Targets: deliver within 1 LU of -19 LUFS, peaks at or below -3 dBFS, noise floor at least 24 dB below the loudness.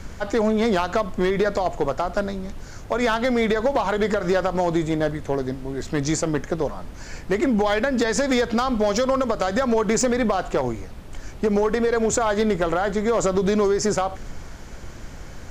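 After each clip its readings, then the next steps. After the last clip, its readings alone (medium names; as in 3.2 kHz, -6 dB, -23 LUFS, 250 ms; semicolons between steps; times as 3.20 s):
clipped samples 1.0%; clipping level -13.5 dBFS; noise floor -38 dBFS; noise floor target -47 dBFS; loudness -22.5 LUFS; peak level -13.5 dBFS; loudness target -19.0 LUFS
-> clip repair -13.5 dBFS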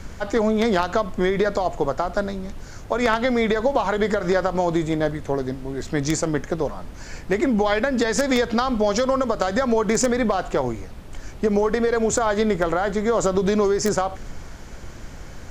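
clipped samples 0.0%; noise floor -38 dBFS; noise floor target -46 dBFS
-> noise print and reduce 8 dB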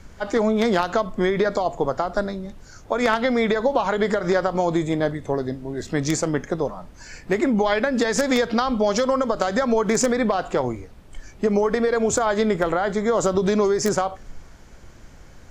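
noise floor -45 dBFS; noise floor target -46 dBFS
-> noise print and reduce 6 dB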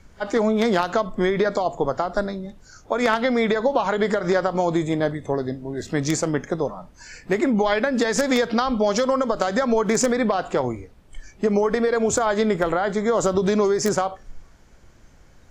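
noise floor -51 dBFS; loudness -22.0 LUFS; peak level -5.0 dBFS; loudness target -19.0 LUFS
-> trim +3 dB; peak limiter -3 dBFS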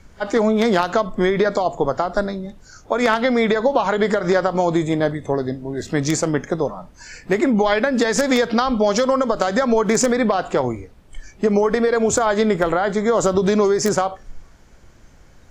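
loudness -19.0 LUFS; peak level -3.0 dBFS; noise floor -48 dBFS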